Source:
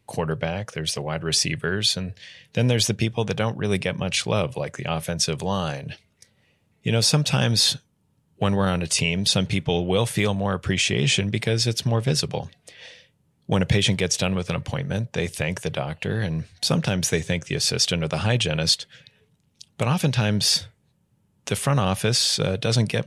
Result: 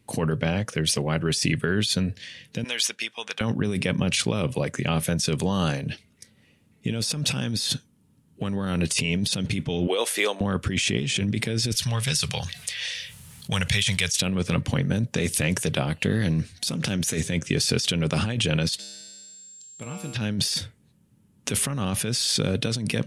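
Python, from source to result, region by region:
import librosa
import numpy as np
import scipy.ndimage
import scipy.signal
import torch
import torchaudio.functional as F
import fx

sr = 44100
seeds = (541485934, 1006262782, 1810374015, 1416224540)

y = fx.chain(x, sr, fx.highpass(hz=1200.0, slope=12),
    fx.high_shelf(hz=6000.0, db=-7.0), at=(2.64, 3.41))
y = fx.chain(y, sr, fx.highpass(hz=410.0, slope=24),
    fx.peak_eq(hz=9100.0, db=-2.5, octaves=0.39), at=(9.87, 10.41))
y = fx.chain(y, sr, fx.tone_stack(knobs='10-0-10'),
    fx.env_flatten(amount_pct=50), at=(11.72, 14.22))
y = fx.chain(y, sr, fx.high_shelf(hz=4300.0, db=6.0),
    fx.doppler_dist(depth_ms=0.14), at=(15.03, 17.29))
y = fx.comb_fb(y, sr, f0_hz=67.0, decay_s=1.7, harmonics='odd', damping=0.0, mix_pct=90, at=(18.78, 20.14), fade=0.02)
y = fx.dmg_tone(y, sr, hz=7500.0, level_db=-48.0, at=(18.78, 20.14), fade=0.02)
y = fx.graphic_eq_15(y, sr, hz=(250, 630, 10000), db=(8, -3, 4))
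y = fx.over_compress(y, sr, threshold_db=-24.0, ratio=-1.0)
y = fx.peak_eq(y, sr, hz=830.0, db=-3.0, octaves=0.77)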